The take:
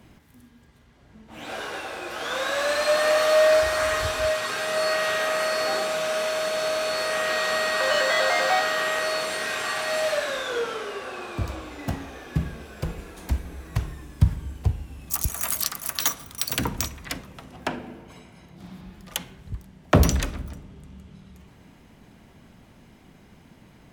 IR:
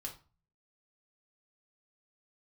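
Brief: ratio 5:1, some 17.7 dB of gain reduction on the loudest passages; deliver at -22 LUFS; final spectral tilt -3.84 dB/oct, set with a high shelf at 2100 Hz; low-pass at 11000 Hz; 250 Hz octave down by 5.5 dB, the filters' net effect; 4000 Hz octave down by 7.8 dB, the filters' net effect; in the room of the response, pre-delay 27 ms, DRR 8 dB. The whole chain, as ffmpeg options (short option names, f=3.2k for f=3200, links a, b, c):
-filter_complex "[0:a]lowpass=11k,equalizer=f=250:t=o:g=-8.5,highshelf=f=2.1k:g=-5.5,equalizer=f=4k:t=o:g=-4.5,acompressor=threshold=-36dB:ratio=5,asplit=2[a][b];[1:a]atrim=start_sample=2205,adelay=27[c];[b][c]afir=irnorm=-1:irlink=0,volume=-6dB[d];[a][d]amix=inputs=2:normalize=0,volume=16dB"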